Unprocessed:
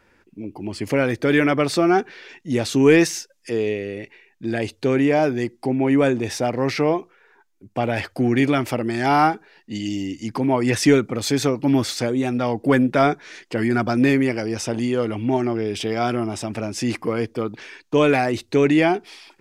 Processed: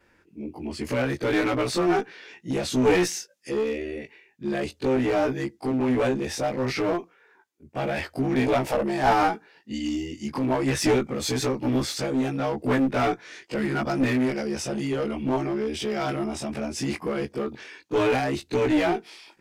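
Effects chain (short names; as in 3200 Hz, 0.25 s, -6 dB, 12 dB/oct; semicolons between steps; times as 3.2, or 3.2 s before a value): short-time reversal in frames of 46 ms; spectral gain 8.35–9.13, 430–990 Hz +8 dB; one-sided clip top -22 dBFS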